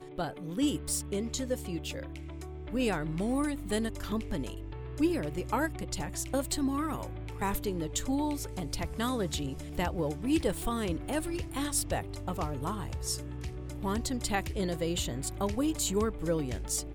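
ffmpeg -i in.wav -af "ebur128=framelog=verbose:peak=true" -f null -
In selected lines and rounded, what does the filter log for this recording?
Integrated loudness:
  I:         -33.0 LUFS
  Threshold: -43.1 LUFS
Loudness range:
  LRA:         1.9 LU
  Threshold: -53.2 LUFS
  LRA low:   -34.1 LUFS
  LRA high:  -32.3 LUFS
True peak:
  Peak:      -14.9 dBFS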